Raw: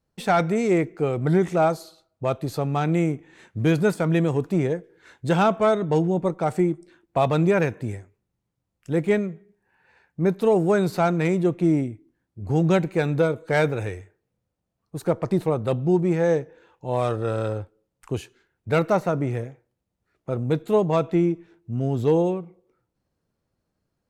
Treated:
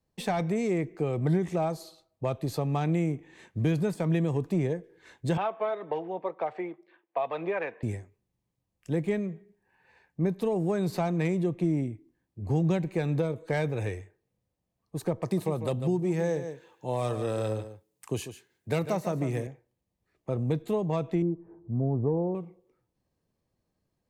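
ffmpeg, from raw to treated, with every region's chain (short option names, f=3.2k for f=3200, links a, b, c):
-filter_complex "[0:a]asettb=1/sr,asplit=3[a][b][c];[a]atrim=end=5.374[d];[b]atrim=start=5.37:end=7.83,asetpts=PTS-STARTPTS,afade=t=in:d=0.004:c=qsin,afade=t=out:st=2.456:d=0.004:c=qsin,acrossover=split=440 3500:gain=0.0708 1 0.0708[e][f][g];[e][f][g]amix=inputs=3:normalize=0,aphaser=in_gain=1:out_gain=1:delay=4.5:decay=0.27:speed=1.9:type=sinusoidal,highpass=130,lowpass=4.5k[h];[c]atrim=start=7.826[i];[d][h]acrossfade=d=0.004:c1=hsin:c2=qsin[j];[j][i]acrossfade=d=0.004:c1=qsin:c2=hsin,asettb=1/sr,asplit=3[k][l][m];[k]atrim=end=15.224[n];[l]atrim=start=15.22:end=19.47,asetpts=PTS-STARTPTS,afade=t=in:d=0.004:c=qsin,afade=t=out:st=4.246:d=0.004:c=qsin,highpass=110,highshelf=f=5.2k:g=10.5,aecho=1:1:146:0.237,atrim=end_sample=187425[o];[m]atrim=start=19.466[p];[n][o]acrossfade=d=0.004:c1=hsin:c2=qsin[q];[q][p]acrossfade=d=0.004:c1=qsin:c2=hsin,asettb=1/sr,asplit=3[r][s][t];[r]atrim=end=21.224[u];[s]atrim=start=21.22:end=22.35,asetpts=PTS-STARTPTS,afade=t=in:d=0.004:c=qsin,afade=t=out:st=1.126:d=0.004:c=qsin,lowpass=f=1.1k:w=0.5412,lowpass=f=1.1k:w=1.3066,acompressor=mode=upward:threshold=-39dB:ratio=2.5:attack=3.2:release=140:knee=2.83:detection=peak[v];[t]atrim=start=22.346[w];[u][v]acrossfade=d=0.004:c1=hsin:c2=qsin[x];[x][w]acrossfade=d=0.004:c1=qsin:c2=hsin,bandreject=f=1.4k:w=5.7,acrossover=split=160[y][z];[z]acompressor=threshold=-25dB:ratio=4[aa];[y][aa]amix=inputs=2:normalize=0,volume=-2dB"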